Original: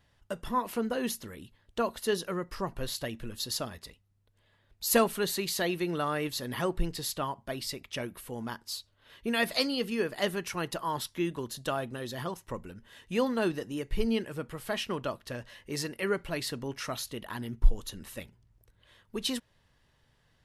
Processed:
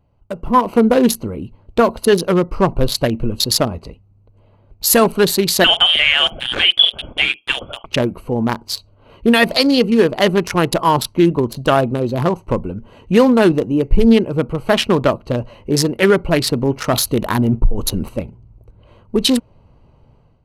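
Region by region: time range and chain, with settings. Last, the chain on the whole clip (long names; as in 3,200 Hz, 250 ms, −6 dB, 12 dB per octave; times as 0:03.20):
0:05.64–0:07.86: double-tracking delay 45 ms −13.5 dB + voice inversion scrambler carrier 3,400 Hz + one half of a high-frequency compander encoder only
0:16.93–0:18.09: high-shelf EQ 9,900 Hz +9 dB + downward compressor 4 to 1, threshold −32 dBFS + leveller curve on the samples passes 1
whole clip: adaptive Wiener filter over 25 samples; automatic gain control gain up to 12 dB; boost into a limiter +9.5 dB; level −1 dB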